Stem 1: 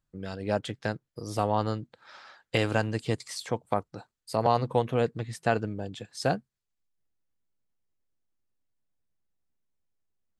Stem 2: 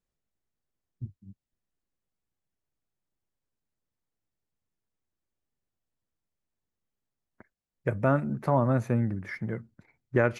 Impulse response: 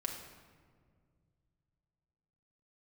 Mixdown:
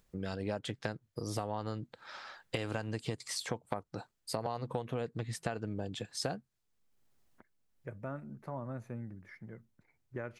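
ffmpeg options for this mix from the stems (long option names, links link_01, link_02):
-filter_complex "[0:a]acompressor=threshold=-28dB:ratio=6,volume=2dB,asplit=2[link_01][link_02];[1:a]acompressor=mode=upward:threshold=-36dB:ratio=2.5,volume=-15.5dB[link_03];[link_02]apad=whole_len=458459[link_04];[link_03][link_04]sidechaincompress=threshold=-47dB:ratio=8:attack=5.1:release=524[link_05];[link_01][link_05]amix=inputs=2:normalize=0,acompressor=threshold=-36dB:ratio=2"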